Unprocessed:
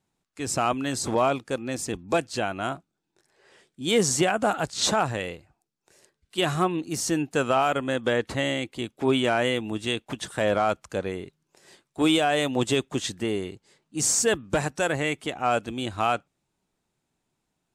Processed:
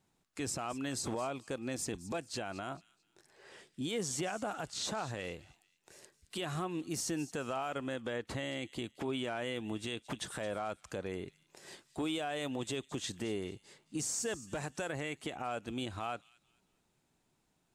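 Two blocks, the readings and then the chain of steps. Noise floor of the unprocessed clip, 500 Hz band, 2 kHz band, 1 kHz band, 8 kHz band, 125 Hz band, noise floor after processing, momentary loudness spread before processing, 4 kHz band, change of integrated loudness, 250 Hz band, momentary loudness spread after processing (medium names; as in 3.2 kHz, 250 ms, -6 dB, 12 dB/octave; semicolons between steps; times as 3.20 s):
-80 dBFS, -13.5 dB, -13.0 dB, -14.5 dB, -11.5 dB, -11.0 dB, -77 dBFS, 10 LU, -12.0 dB, -13.0 dB, -11.5 dB, 10 LU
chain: compression 3:1, threshold -38 dBFS, peak gain reduction 15.5 dB; peak limiter -29 dBFS, peak gain reduction 8.5 dB; on a send: feedback echo behind a high-pass 220 ms, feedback 33%, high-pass 3 kHz, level -15 dB; on the sum: trim +1.5 dB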